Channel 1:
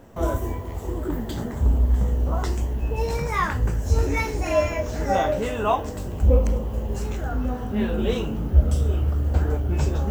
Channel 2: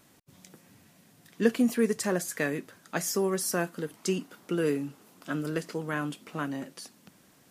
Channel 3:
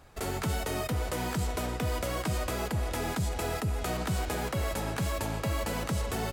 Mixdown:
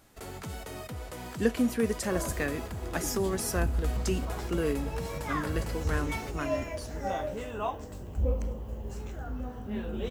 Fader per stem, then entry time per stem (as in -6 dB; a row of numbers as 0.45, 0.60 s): -11.0, -2.5, -8.5 dB; 1.95, 0.00, 0.00 s